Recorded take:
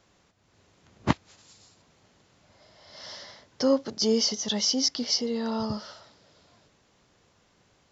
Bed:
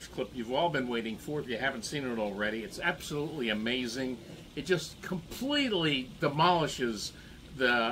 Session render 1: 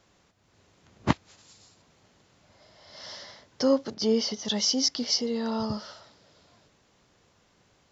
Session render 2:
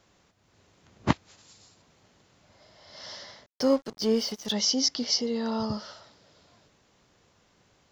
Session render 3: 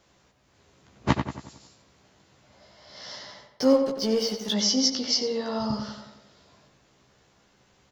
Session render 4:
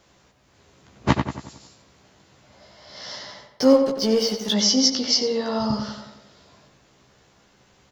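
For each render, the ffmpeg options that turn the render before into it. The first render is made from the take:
ffmpeg -i in.wav -filter_complex "[0:a]asettb=1/sr,asplit=3[link_01][link_02][link_03];[link_01]atrim=end=3.944[link_04];[link_02]atrim=start=3.94:end=4.45,asetpts=PTS-STARTPTS,afade=type=in:duration=0.004:curve=qsin,afade=type=out:start_time=0.506:duration=0.004:curve=qsin,lowpass=4100[link_05];[link_03]atrim=start=4.446[link_06];[link_04][link_05]acrossfade=duration=0.004:curve1=hsin:curve2=qsin[link_07];[link_07][link_06]acrossfade=duration=0.004:curve1=qsin:curve2=hsin" out.wav
ffmpeg -i in.wav -filter_complex "[0:a]asettb=1/sr,asplit=3[link_01][link_02][link_03];[link_01]atrim=end=3.464[link_04];[link_02]atrim=start=3.46:end=4.52,asetpts=PTS-STARTPTS,afade=type=in:duration=0.004:curve=qsin,afade=type=out:start_time=1.056:duration=0.004:curve=qsin,aeval=exprs='sgn(val(0))*max(abs(val(0))-0.00708,0)':channel_layout=same[link_05];[link_03]atrim=start=4.516[link_06];[link_04][link_05]acrossfade=duration=0.004:curve1=hsin:curve2=qsin[link_07];[link_07][link_06]acrossfade=duration=0.004:curve1=qsin:curve2=hsin" out.wav
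ffmpeg -i in.wav -filter_complex "[0:a]asplit=2[link_01][link_02];[link_02]adelay=15,volume=-4dB[link_03];[link_01][link_03]amix=inputs=2:normalize=0,asplit=2[link_04][link_05];[link_05]adelay=91,lowpass=frequency=3100:poles=1,volume=-6.5dB,asplit=2[link_06][link_07];[link_07]adelay=91,lowpass=frequency=3100:poles=1,volume=0.5,asplit=2[link_08][link_09];[link_09]adelay=91,lowpass=frequency=3100:poles=1,volume=0.5,asplit=2[link_10][link_11];[link_11]adelay=91,lowpass=frequency=3100:poles=1,volume=0.5,asplit=2[link_12][link_13];[link_13]adelay=91,lowpass=frequency=3100:poles=1,volume=0.5,asplit=2[link_14][link_15];[link_15]adelay=91,lowpass=frequency=3100:poles=1,volume=0.5[link_16];[link_06][link_08][link_10][link_12][link_14][link_16]amix=inputs=6:normalize=0[link_17];[link_04][link_17]amix=inputs=2:normalize=0" out.wav
ffmpeg -i in.wav -af "volume=4.5dB,alimiter=limit=-3dB:level=0:latency=1" out.wav

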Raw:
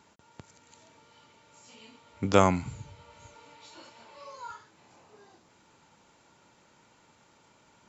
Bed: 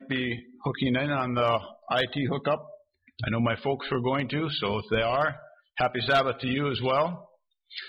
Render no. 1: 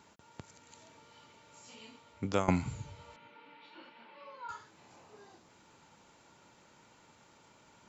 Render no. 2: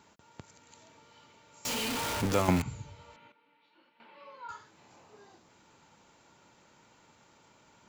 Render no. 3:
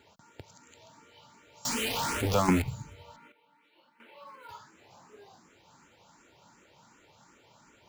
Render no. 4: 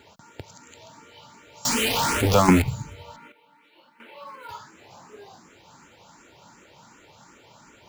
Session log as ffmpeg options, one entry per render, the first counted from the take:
ffmpeg -i in.wav -filter_complex "[0:a]asettb=1/sr,asplit=3[link_01][link_02][link_03];[link_01]atrim=end=3.164[link_04];[link_02]atrim=start=3.16:end=4.49,asetpts=PTS-STARTPTS,afade=type=in:duration=0.004:curve=qsin,afade=type=out:start_time=1.326:duration=0.004:curve=qsin,highpass=frequency=180:width=0.5412,highpass=frequency=180:width=1.3066,equalizer=frequency=420:width_type=q:width=4:gain=-5,equalizer=frequency=650:width_type=q:width=4:gain=-9,equalizer=frequency=1100:width_type=q:width=4:gain=-5,lowpass=frequency=3200:width=0.5412,lowpass=frequency=3200:width=1.3066[link_05];[link_03]atrim=start=4.486[link_06];[link_04][link_05]acrossfade=duration=0.004:curve1=hsin:curve2=qsin[link_07];[link_07][link_06]acrossfade=duration=0.004:curve1=qsin:curve2=hsin,asplit=2[link_08][link_09];[link_08]atrim=end=2.48,asetpts=PTS-STARTPTS,afade=type=out:start_time=1.69:duration=0.79:curve=qsin:silence=0.125893[link_10];[link_09]atrim=start=2.48,asetpts=PTS-STARTPTS,afade=type=in:duration=0.004:curve=hsin:silence=0.125893[link_11];[link_10][link_11]concat=n=2:v=0:a=1" out.wav
ffmpeg -i in.wav -filter_complex "[0:a]asettb=1/sr,asplit=3[link_01][link_02][link_03];[link_01]atrim=end=1.654[link_04];[link_02]atrim=start=1.65:end=2.62,asetpts=PTS-STARTPTS,afade=type=in:duration=0.004:curve=qsin,afade=type=out:start_time=0.966:duration=0.004:curve=qsin,aeval=exprs='val(0)+0.5*0.0422*sgn(val(0))':channel_layout=same[link_05];[link_03]atrim=start=2.616[link_06];[link_04][link_05]acrossfade=duration=0.004:curve1=hsin:curve2=qsin[link_07];[link_07][link_06]acrossfade=duration=0.004:curve1=qsin:curve2=hsin,asplit=3[link_08][link_09][link_10];[link_08]atrim=end=3.322[link_11];[link_09]atrim=start=3.318:end=4.002,asetpts=PTS-STARTPTS,volume=-12dB[link_12];[link_10]atrim=start=3.998[link_13];[link_11][link_12]acrossfade=duration=0.004:curve1=hsin:curve2=hsin[link_14];[link_14][link_13]acrossfade=duration=0.004:curve1=hsin:curve2=hsin" out.wav
ffmpeg -i in.wav -filter_complex "[0:a]asplit=2[link_01][link_02];[link_02]acrusher=bits=4:mode=log:mix=0:aa=0.000001,volume=-3dB[link_03];[link_01][link_03]amix=inputs=2:normalize=0,asplit=2[link_04][link_05];[link_05]afreqshift=2.7[link_06];[link_04][link_06]amix=inputs=2:normalize=1" out.wav
ffmpeg -i in.wav -af "volume=8dB" out.wav

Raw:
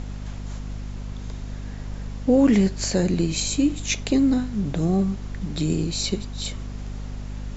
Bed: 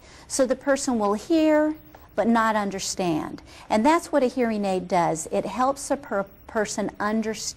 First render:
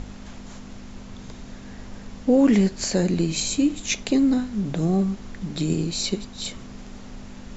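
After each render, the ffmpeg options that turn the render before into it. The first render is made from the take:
ffmpeg -i in.wav -af "bandreject=frequency=50:width_type=h:width=4,bandreject=frequency=100:width_type=h:width=4,bandreject=frequency=150:width_type=h:width=4" out.wav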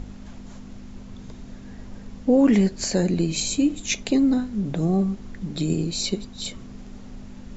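ffmpeg -i in.wav -af "afftdn=noise_reduction=6:noise_floor=-41" out.wav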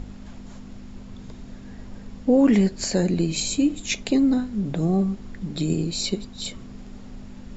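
ffmpeg -i in.wav -af "bandreject=frequency=6100:width=15" out.wav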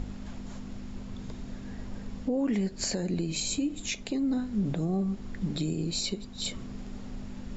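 ffmpeg -i in.wav -af "acompressor=threshold=-22dB:ratio=2.5,alimiter=limit=-20.5dB:level=0:latency=1:release=459" out.wav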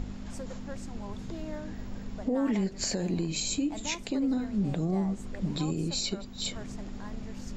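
ffmpeg -i in.wav -i bed.wav -filter_complex "[1:a]volume=-22dB[link_01];[0:a][link_01]amix=inputs=2:normalize=0" out.wav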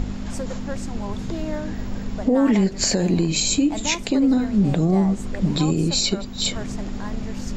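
ffmpeg -i in.wav -af "volume=10.5dB" out.wav

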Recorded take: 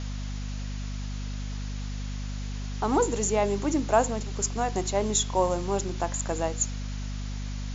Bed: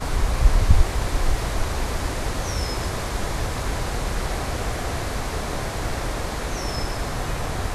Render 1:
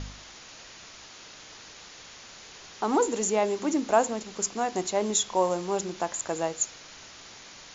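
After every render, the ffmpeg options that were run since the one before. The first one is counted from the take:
ffmpeg -i in.wav -af "bandreject=frequency=50:width_type=h:width=4,bandreject=frequency=100:width_type=h:width=4,bandreject=frequency=150:width_type=h:width=4,bandreject=frequency=200:width_type=h:width=4,bandreject=frequency=250:width_type=h:width=4" out.wav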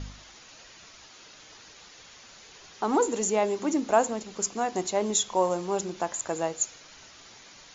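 ffmpeg -i in.wav -af "afftdn=noise_reduction=6:noise_floor=-48" out.wav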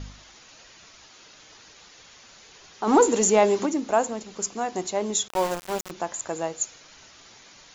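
ffmpeg -i in.wav -filter_complex "[0:a]asplit=3[link_01][link_02][link_03];[link_01]afade=type=out:start_time=2.86:duration=0.02[link_04];[link_02]acontrast=79,afade=type=in:start_time=2.86:duration=0.02,afade=type=out:start_time=3.65:duration=0.02[link_05];[link_03]afade=type=in:start_time=3.65:duration=0.02[link_06];[link_04][link_05][link_06]amix=inputs=3:normalize=0,asettb=1/sr,asplit=3[link_07][link_08][link_09];[link_07]atrim=end=5.284[link_10];[link_08]atrim=start=5.28:end=5.91,asetpts=PTS-STARTPTS,afade=type=in:duration=0.004:curve=qsin,afade=type=out:start_time=0.626:duration=0.004:curve=qsin,aeval=exprs='val(0)*gte(abs(val(0)),0.0422)':channel_layout=same[link_11];[link_09]atrim=start=5.906[link_12];[link_10][link_11]acrossfade=duration=0.004:curve1=hsin:curve2=qsin[link_13];[link_13][link_12]acrossfade=duration=0.004:curve1=qsin:curve2=hsin" out.wav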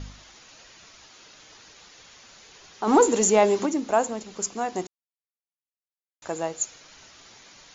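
ffmpeg -i in.wav -filter_complex "[0:a]asplit=3[link_01][link_02][link_03];[link_01]atrim=end=4.87,asetpts=PTS-STARTPTS,afade=type=out:start_time=4.866:duration=0.004:curve=hsin[link_04];[link_02]atrim=start=4.87:end=6.22,asetpts=PTS-STARTPTS,volume=0[link_05];[link_03]atrim=start=6.22,asetpts=PTS-STARTPTS,afade=type=in:duration=0.004:curve=hsin[link_06];[link_04][link_05][link_06]concat=n=3:v=0:a=1" out.wav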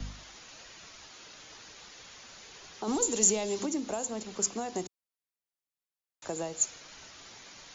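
ffmpeg -i in.wav -filter_complex "[0:a]acrossover=split=120|3000[link_01][link_02][link_03];[link_02]acompressor=threshold=-29dB:ratio=6[link_04];[link_01][link_04][link_03]amix=inputs=3:normalize=0,acrossover=split=130|650|3000[link_05][link_06][link_07][link_08];[link_07]alimiter=level_in=11.5dB:limit=-24dB:level=0:latency=1:release=101,volume=-11.5dB[link_09];[link_05][link_06][link_09][link_08]amix=inputs=4:normalize=0" out.wav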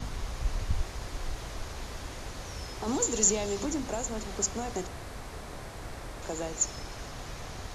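ffmpeg -i in.wav -i bed.wav -filter_complex "[1:a]volume=-14.5dB[link_01];[0:a][link_01]amix=inputs=2:normalize=0" out.wav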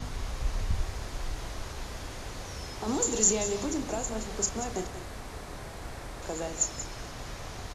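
ffmpeg -i in.wav -filter_complex "[0:a]asplit=2[link_01][link_02];[link_02]adelay=32,volume=-11dB[link_03];[link_01][link_03]amix=inputs=2:normalize=0,aecho=1:1:182:0.251" out.wav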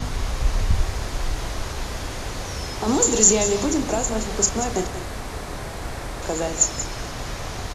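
ffmpeg -i in.wav -af "volume=9.5dB,alimiter=limit=-1dB:level=0:latency=1" out.wav

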